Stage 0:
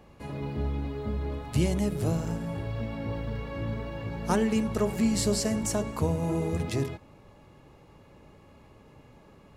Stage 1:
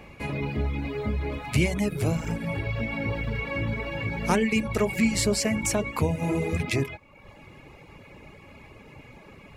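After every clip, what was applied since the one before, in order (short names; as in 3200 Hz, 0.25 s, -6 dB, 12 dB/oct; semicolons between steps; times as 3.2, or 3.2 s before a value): reverb removal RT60 0.72 s; bell 2300 Hz +13.5 dB 0.43 oct; in parallel at +2 dB: compressor, threshold -34 dBFS, peak gain reduction 13.5 dB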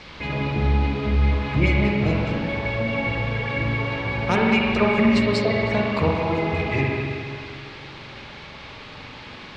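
LFO low-pass sine 4.9 Hz 790–4100 Hz; band noise 840–4500 Hz -47 dBFS; spring tank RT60 2.4 s, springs 44/57 ms, chirp 20 ms, DRR -2.5 dB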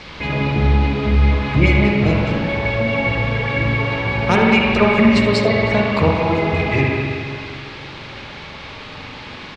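echo 77 ms -14.5 dB; gain +5.5 dB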